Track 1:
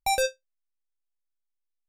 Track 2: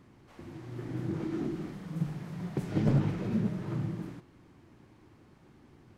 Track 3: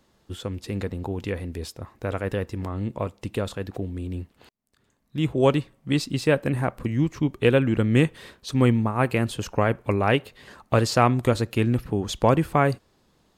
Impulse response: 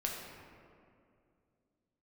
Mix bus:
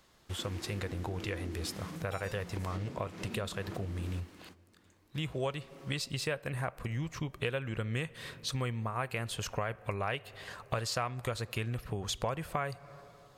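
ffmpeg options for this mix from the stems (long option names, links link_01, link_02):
-filter_complex "[0:a]adelay=2050,volume=-18.5dB[link_01];[1:a]acompressor=threshold=-39dB:ratio=8,highpass=frequency=170:width=0.5412,highpass=frequency=170:width=1.3066,highshelf=frequency=2300:gain=10,volume=2.5dB,asplit=2[link_02][link_03];[link_03]volume=-19dB[link_04];[2:a]equalizer=frequency=280:width_type=o:width=1.2:gain=-14,bandreject=frequency=860:width=13,volume=1.5dB,asplit=3[link_05][link_06][link_07];[link_06]volume=-23.5dB[link_08];[link_07]apad=whole_len=263466[link_09];[link_02][link_09]sidechaingate=range=-25dB:threshold=-57dB:ratio=16:detection=peak[link_10];[3:a]atrim=start_sample=2205[link_11];[link_04][link_08]amix=inputs=2:normalize=0[link_12];[link_12][link_11]afir=irnorm=-1:irlink=0[link_13];[link_01][link_10][link_05][link_13]amix=inputs=4:normalize=0,lowshelf=frequency=220:gain=-3.5,acompressor=threshold=-33dB:ratio=4"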